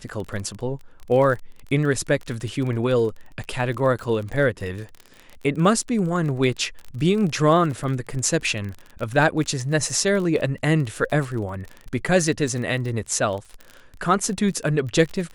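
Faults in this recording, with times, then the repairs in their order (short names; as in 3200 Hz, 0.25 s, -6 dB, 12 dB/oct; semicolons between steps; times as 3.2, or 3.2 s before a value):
crackle 29/s -29 dBFS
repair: de-click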